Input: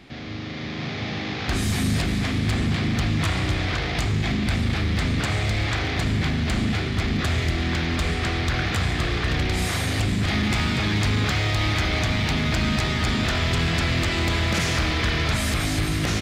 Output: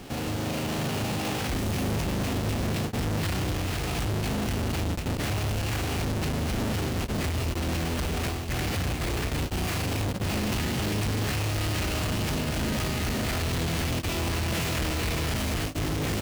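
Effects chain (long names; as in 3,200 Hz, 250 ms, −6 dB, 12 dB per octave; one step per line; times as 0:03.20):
each half-wave held at its own peak
brickwall limiter −25.5 dBFS, peak gain reduction 39 dB
formants moved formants +4 semitones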